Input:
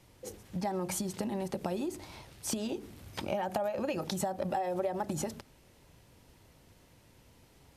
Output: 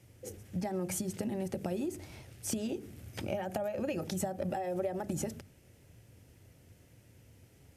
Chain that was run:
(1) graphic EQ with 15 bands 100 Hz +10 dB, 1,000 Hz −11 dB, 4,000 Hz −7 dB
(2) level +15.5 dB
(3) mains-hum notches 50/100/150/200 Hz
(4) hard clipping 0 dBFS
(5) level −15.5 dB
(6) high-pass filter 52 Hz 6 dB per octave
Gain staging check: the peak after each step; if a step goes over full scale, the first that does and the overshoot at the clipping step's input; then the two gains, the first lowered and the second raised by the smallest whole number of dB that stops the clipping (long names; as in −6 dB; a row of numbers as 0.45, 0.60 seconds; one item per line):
−20.0, −4.5, −5.0, −5.0, −20.5, −20.5 dBFS
no step passes full scale